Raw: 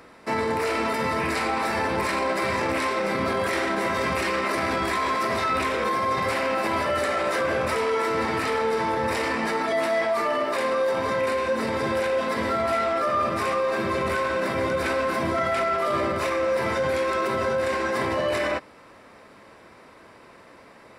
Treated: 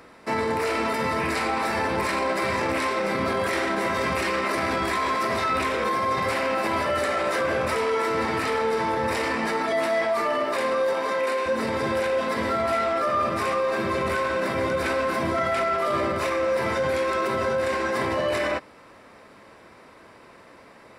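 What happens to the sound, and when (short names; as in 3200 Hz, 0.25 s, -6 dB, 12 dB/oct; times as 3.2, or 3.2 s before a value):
10.93–11.46 HPF 310 Hz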